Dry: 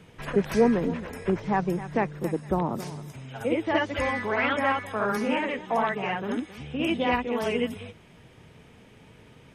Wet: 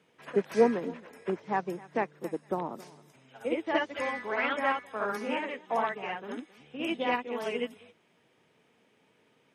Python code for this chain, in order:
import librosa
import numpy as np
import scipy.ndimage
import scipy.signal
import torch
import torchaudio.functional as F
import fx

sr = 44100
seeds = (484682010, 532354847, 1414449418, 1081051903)

y = scipy.signal.sosfilt(scipy.signal.butter(2, 260.0, 'highpass', fs=sr, output='sos'), x)
y = fx.high_shelf(y, sr, hz=12000.0, db=-4.0)
y = fx.upward_expand(y, sr, threshold_db=-40.0, expansion=1.5)